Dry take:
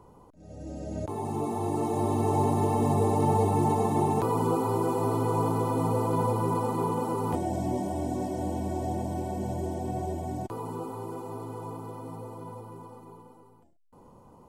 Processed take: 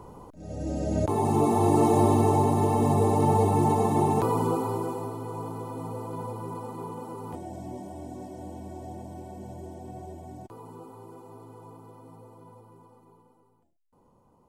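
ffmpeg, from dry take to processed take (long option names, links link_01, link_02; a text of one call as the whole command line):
ffmpeg -i in.wav -af "volume=8dB,afade=type=out:start_time=1.88:duration=0.55:silence=0.501187,afade=type=out:start_time=4.24:duration=0.9:silence=0.281838" out.wav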